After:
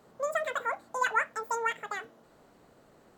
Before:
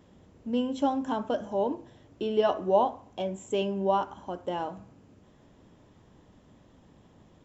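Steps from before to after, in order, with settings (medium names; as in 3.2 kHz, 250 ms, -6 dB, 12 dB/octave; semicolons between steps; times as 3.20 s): peaking EQ 1 kHz -7.5 dB 0.31 oct; speed mistake 33 rpm record played at 78 rpm; trim -2.5 dB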